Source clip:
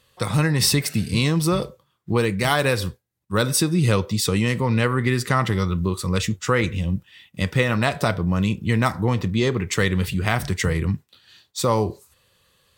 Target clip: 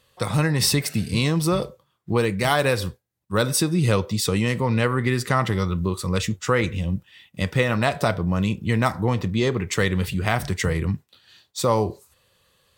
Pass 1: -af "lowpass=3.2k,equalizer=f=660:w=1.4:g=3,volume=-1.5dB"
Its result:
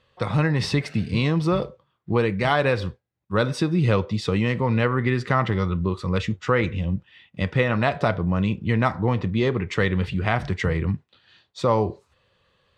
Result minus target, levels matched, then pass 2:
4000 Hz band -4.5 dB
-af "equalizer=f=660:w=1.4:g=3,volume=-1.5dB"

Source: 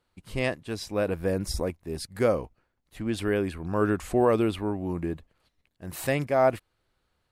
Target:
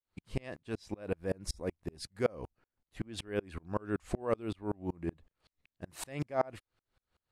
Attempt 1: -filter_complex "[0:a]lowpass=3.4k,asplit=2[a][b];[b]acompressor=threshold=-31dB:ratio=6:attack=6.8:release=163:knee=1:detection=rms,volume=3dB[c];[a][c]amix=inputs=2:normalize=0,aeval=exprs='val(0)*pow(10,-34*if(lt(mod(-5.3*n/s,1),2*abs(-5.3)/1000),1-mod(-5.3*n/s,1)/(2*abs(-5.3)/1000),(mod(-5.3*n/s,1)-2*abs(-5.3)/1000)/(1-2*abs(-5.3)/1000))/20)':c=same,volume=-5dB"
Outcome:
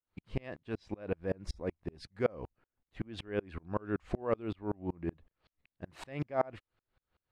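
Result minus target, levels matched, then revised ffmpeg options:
8000 Hz band -13.0 dB
-filter_complex "[0:a]lowpass=9.2k,asplit=2[a][b];[b]acompressor=threshold=-31dB:ratio=6:attack=6.8:release=163:knee=1:detection=rms,volume=3dB[c];[a][c]amix=inputs=2:normalize=0,aeval=exprs='val(0)*pow(10,-34*if(lt(mod(-5.3*n/s,1),2*abs(-5.3)/1000),1-mod(-5.3*n/s,1)/(2*abs(-5.3)/1000),(mod(-5.3*n/s,1)-2*abs(-5.3)/1000)/(1-2*abs(-5.3)/1000))/20)':c=same,volume=-5dB"

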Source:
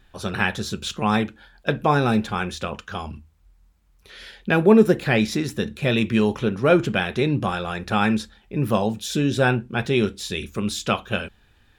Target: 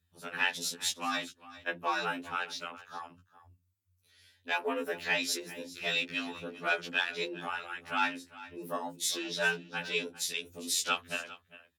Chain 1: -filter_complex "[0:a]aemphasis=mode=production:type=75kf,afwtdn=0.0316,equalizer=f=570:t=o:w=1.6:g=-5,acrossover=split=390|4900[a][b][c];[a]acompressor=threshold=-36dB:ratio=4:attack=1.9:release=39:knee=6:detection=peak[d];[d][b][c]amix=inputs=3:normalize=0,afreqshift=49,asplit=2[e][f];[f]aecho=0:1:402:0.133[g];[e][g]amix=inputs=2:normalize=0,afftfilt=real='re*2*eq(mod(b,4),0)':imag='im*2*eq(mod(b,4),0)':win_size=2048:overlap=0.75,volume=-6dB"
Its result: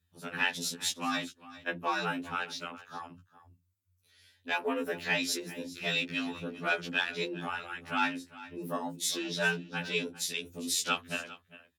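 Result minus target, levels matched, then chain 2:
compressor: peak gain reduction -8 dB
-filter_complex "[0:a]aemphasis=mode=production:type=75kf,afwtdn=0.0316,equalizer=f=570:t=o:w=1.6:g=-5,acrossover=split=390|4900[a][b][c];[a]acompressor=threshold=-46.5dB:ratio=4:attack=1.9:release=39:knee=6:detection=peak[d];[d][b][c]amix=inputs=3:normalize=0,afreqshift=49,asplit=2[e][f];[f]aecho=0:1:402:0.133[g];[e][g]amix=inputs=2:normalize=0,afftfilt=real='re*2*eq(mod(b,4),0)':imag='im*2*eq(mod(b,4),0)':win_size=2048:overlap=0.75,volume=-6dB"

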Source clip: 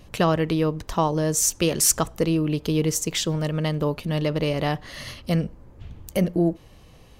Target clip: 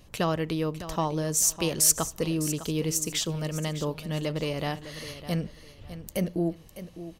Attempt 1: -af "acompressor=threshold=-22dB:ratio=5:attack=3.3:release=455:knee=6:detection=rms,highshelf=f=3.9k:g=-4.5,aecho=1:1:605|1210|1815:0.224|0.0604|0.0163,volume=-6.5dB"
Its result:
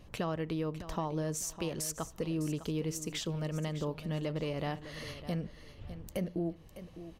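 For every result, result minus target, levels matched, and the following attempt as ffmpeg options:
compressor: peak gain reduction +10.5 dB; 8000 Hz band -6.5 dB
-af "highshelf=f=3.9k:g=-4.5,aecho=1:1:605|1210|1815:0.224|0.0604|0.0163,volume=-6.5dB"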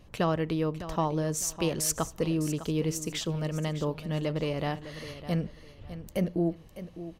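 8000 Hz band -5.5 dB
-af "highshelf=f=3.9k:g=6,aecho=1:1:605|1210|1815:0.224|0.0604|0.0163,volume=-6.5dB"

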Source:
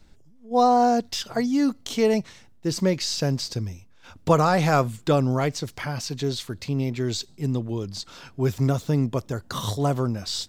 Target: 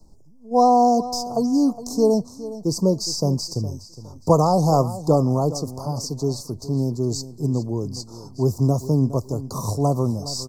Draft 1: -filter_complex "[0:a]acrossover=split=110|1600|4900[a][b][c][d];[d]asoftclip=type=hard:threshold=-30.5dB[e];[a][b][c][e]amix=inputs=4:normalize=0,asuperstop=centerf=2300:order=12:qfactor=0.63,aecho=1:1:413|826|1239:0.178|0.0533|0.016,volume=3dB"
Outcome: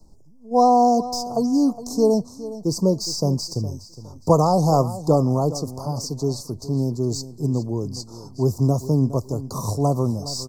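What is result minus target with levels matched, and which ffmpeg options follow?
hard clip: distortion +20 dB
-filter_complex "[0:a]acrossover=split=110|1600|4900[a][b][c][d];[d]asoftclip=type=hard:threshold=-23.5dB[e];[a][b][c][e]amix=inputs=4:normalize=0,asuperstop=centerf=2300:order=12:qfactor=0.63,aecho=1:1:413|826|1239:0.178|0.0533|0.016,volume=3dB"

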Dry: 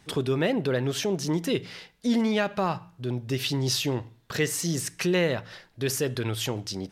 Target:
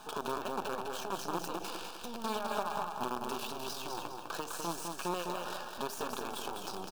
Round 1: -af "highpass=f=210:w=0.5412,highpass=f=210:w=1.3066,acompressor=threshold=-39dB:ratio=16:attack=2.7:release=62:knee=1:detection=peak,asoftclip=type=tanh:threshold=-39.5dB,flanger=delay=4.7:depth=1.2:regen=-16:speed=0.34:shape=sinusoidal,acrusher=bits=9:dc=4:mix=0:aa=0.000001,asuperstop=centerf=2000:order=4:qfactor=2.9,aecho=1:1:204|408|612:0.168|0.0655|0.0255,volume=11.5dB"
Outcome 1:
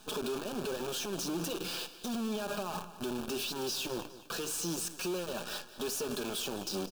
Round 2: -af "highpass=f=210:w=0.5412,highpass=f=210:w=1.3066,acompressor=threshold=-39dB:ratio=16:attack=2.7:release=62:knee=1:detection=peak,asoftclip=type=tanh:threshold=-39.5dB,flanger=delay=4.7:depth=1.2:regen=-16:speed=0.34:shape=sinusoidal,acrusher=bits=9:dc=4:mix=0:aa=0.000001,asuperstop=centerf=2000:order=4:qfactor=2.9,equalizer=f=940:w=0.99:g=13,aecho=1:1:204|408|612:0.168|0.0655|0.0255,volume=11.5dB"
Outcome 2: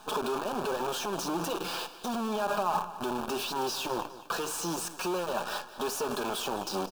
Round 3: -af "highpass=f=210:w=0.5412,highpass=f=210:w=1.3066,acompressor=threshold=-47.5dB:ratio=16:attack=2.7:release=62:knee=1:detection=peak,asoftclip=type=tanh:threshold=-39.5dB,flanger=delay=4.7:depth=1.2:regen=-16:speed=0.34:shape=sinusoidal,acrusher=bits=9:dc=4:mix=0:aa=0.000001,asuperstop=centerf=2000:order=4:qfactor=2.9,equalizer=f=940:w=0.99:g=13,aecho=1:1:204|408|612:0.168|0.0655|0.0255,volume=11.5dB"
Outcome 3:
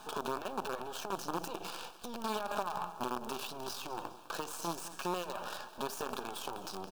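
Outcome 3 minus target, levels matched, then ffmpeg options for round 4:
echo-to-direct -11 dB
-af "highpass=f=210:w=0.5412,highpass=f=210:w=1.3066,acompressor=threshold=-47.5dB:ratio=16:attack=2.7:release=62:knee=1:detection=peak,asoftclip=type=tanh:threshold=-39.5dB,flanger=delay=4.7:depth=1.2:regen=-16:speed=0.34:shape=sinusoidal,acrusher=bits=9:dc=4:mix=0:aa=0.000001,asuperstop=centerf=2000:order=4:qfactor=2.9,equalizer=f=940:w=0.99:g=13,aecho=1:1:204|408|612|816|1020:0.596|0.232|0.0906|0.0353|0.0138,volume=11.5dB"

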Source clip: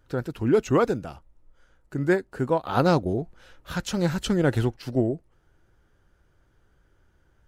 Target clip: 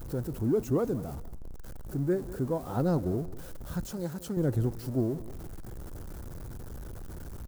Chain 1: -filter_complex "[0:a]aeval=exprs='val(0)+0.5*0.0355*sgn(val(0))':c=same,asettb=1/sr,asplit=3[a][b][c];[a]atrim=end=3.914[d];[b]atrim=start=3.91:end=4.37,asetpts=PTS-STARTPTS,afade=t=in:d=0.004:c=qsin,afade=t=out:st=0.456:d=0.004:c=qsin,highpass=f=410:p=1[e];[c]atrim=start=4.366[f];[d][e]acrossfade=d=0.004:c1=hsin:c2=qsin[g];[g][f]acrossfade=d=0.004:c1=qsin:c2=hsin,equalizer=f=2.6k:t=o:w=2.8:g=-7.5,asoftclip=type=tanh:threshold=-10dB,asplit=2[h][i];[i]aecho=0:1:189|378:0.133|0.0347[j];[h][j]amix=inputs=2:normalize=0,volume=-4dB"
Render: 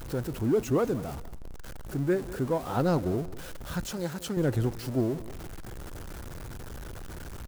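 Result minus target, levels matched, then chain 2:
2000 Hz band +7.0 dB
-filter_complex "[0:a]aeval=exprs='val(0)+0.5*0.0355*sgn(val(0))':c=same,asettb=1/sr,asplit=3[a][b][c];[a]atrim=end=3.914[d];[b]atrim=start=3.91:end=4.37,asetpts=PTS-STARTPTS,afade=t=in:d=0.004:c=qsin,afade=t=out:st=0.456:d=0.004:c=qsin,highpass=f=410:p=1[e];[c]atrim=start=4.366[f];[d][e]acrossfade=d=0.004:c1=hsin:c2=qsin[g];[g][f]acrossfade=d=0.004:c1=qsin:c2=hsin,equalizer=f=2.6k:t=o:w=2.8:g=-19,asoftclip=type=tanh:threshold=-10dB,asplit=2[h][i];[i]aecho=0:1:189|378:0.133|0.0347[j];[h][j]amix=inputs=2:normalize=0,volume=-4dB"

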